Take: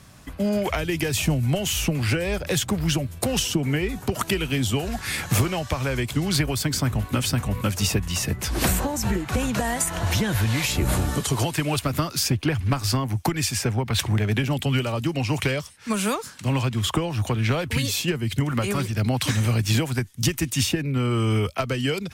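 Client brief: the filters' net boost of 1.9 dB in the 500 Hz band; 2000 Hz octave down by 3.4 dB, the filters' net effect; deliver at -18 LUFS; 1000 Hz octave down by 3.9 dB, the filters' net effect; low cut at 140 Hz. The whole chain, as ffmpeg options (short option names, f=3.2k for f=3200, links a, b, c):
-af "highpass=140,equalizer=f=500:t=o:g=4,equalizer=f=1k:t=o:g=-6,equalizer=f=2k:t=o:g=-3,volume=7.5dB"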